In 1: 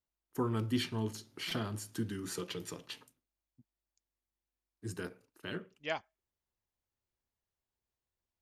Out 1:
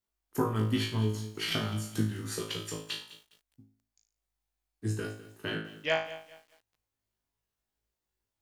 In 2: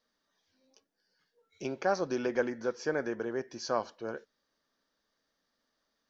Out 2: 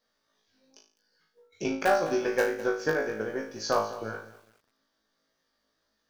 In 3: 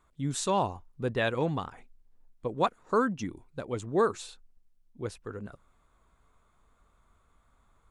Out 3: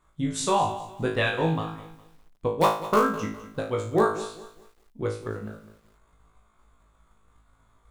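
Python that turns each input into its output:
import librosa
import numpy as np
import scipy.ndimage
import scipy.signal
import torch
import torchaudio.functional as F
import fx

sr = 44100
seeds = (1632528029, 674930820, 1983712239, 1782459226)

p1 = fx.dynamic_eq(x, sr, hz=360.0, q=1.1, threshold_db=-42.0, ratio=4.0, max_db=-3)
p2 = fx.transient(p1, sr, attack_db=7, sustain_db=-3)
p3 = (np.mod(10.0 ** (14.0 / 20.0) * p2 + 1.0, 2.0) - 1.0) / 10.0 ** (14.0 / 20.0)
p4 = p2 + (p3 * librosa.db_to_amplitude(-11.5))
p5 = fx.room_flutter(p4, sr, wall_m=3.2, rt60_s=0.43)
p6 = fx.echo_crushed(p5, sr, ms=205, feedback_pct=35, bits=8, wet_db=-15.0)
y = p6 * librosa.db_to_amplitude(-2.0)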